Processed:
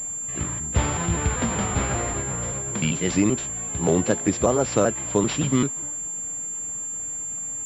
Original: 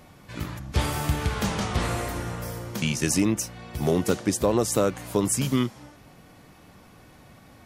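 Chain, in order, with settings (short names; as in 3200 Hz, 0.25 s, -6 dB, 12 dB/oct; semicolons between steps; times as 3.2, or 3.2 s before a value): trilling pitch shifter +2.5 st, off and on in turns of 0.194 s; pulse-width modulation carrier 7300 Hz; gain +2.5 dB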